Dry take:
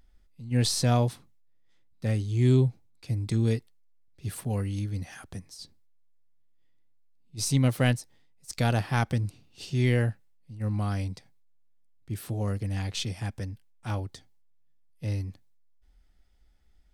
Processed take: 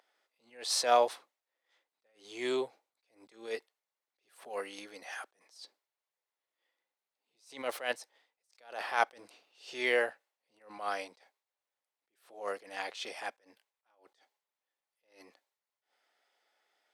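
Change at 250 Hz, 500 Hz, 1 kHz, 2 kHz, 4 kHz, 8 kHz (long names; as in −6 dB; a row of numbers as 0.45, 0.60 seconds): −17.5, −1.5, +2.0, +0.5, −4.0, −6.5 decibels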